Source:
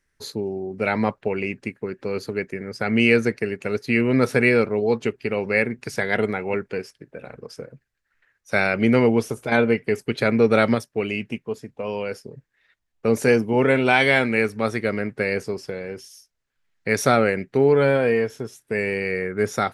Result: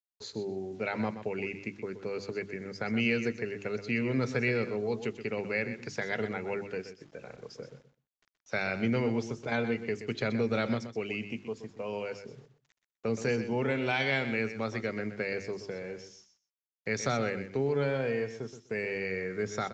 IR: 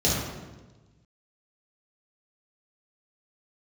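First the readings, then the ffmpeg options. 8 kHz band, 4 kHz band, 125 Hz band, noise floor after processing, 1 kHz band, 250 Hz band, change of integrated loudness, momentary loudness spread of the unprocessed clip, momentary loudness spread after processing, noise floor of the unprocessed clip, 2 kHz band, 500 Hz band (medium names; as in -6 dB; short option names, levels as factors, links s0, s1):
-9.5 dB, -8.5 dB, -8.5 dB, under -85 dBFS, -12.0 dB, -10.5 dB, -11.0 dB, 15 LU, 11 LU, -75 dBFS, -10.5 dB, -11.5 dB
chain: -filter_complex "[0:a]bandreject=f=50:t=h:w=6,bandreject=f=100:t=h:w=6,bandreject=f=150:t=h:w=6,bandreject=f=200:t=h:w=6,bandreject=f=250:t=h:w=6,bandreject=f=300:t=h:w=6,bandreject=f=350:t=h:w=6,acrossover=split=180|3000[s0][s1][s2];[s1]acompressor=threshold=0.0562:ratio=2[s3];[s0][s3][s2]amix=inputs=3:normalize=0,acrusher=bits=8:mix=0:aa=0.000001,asplit=2[s4][s5];[s5]aecho=0:1:125|250:0.282|0.0479[s6];[s4][s6]amix=inputs=2:normalize=0,aresample=16000,aresample=44100,volume=0.422"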